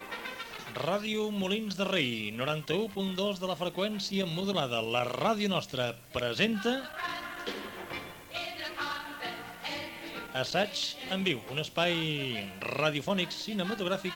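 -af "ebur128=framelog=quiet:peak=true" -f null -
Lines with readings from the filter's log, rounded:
Integrated loudness:
  I:         -32.3 LUFS
  Threshold: -42.3 LUFS
Loudness range:
  LRA:         5.4 LU
  Threshold: -52.3 LUFS
  LRA low:   -36.2 LUFS
  LRA high:  -30.8 LUFS
True peak:
  Peak:      -12.4 dBFS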